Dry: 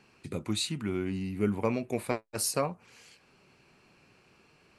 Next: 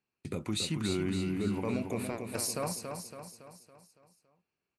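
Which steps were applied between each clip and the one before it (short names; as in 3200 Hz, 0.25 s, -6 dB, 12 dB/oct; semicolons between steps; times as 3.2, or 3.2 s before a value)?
gate -51 dBFS, range -28 dB; limiter -24.5 dBFS, peak gain reduction 10.5 dB; feedback echo 0.28 s, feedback 50%, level -6 dB; gain +1 dB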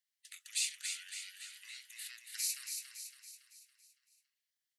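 steep high-pass 1900 Hz 48 dB/oct; spectral gate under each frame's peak -10 dB weak; gain +5 dB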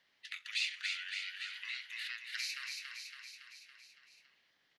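air absorption 290 m; feedback echo 64 ms, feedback 54%, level -22 dB; three-band squash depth 40%; gain +13 dB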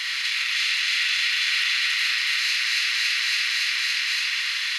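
per-bin compression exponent 0.2; limiter -25.5 dBFS, peak gain reduction 9.5 dB; reverb RT60 1.6 s, pre-delay 7 ms, DRR -3.5 dB; gain +6.5 dB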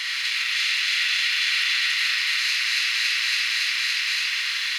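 lo-fi delay 91 ms, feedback 55%, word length 7-bit, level -13 dB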